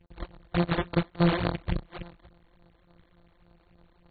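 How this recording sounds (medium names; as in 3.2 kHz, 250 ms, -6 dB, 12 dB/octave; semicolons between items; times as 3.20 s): a buzz of ramps at a fixed pitch in blocks of 256 samples; phasing stages 12, 3.5 Hz, lowest notch 130–4700 Hz; aliases and images of a low sample rate 5.2 kHz, jitter 0%; AAC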